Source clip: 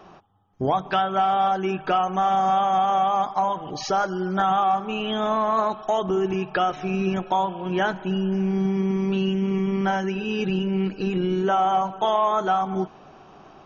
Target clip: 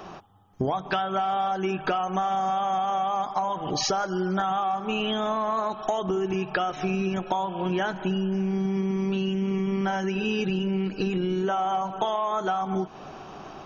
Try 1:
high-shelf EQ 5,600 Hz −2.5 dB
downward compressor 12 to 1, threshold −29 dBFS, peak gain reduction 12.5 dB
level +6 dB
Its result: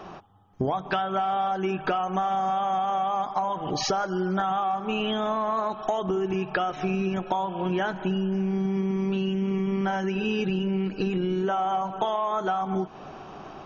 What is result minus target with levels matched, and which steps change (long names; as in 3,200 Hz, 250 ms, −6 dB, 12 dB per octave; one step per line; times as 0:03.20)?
8,000 Hz band −3.5 dB
change: high-shelf EQ 5,600 Hz +6.5 dB